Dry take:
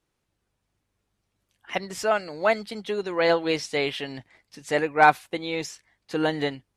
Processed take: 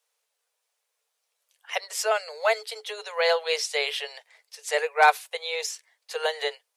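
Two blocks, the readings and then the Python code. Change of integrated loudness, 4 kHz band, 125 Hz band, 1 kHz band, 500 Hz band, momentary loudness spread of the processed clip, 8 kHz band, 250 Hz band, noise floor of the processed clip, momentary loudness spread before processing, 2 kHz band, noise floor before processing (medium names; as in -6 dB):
-1.0 dB, +3.5 dB, under -40 dB, -1.5 dB, -2.0 dB, 15 LU, +6.5 dB, under -30 dB, -80 dBFS, 15 LU, 0.0 dB, -79 dBFS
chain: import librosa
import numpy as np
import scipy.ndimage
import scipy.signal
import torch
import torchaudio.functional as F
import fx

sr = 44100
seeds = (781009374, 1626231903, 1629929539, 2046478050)

y = scipy.signal.sosfilt(scipy.signal.cheby1(10, 1.0, 430.0, 'highpass', fs=sr, output='sos'), x)
y = fx.high_shelf(y, sr, hz=3900.0, db=11.5)
y = F.gain(torch.from_numpy(y), -1.5).numpy()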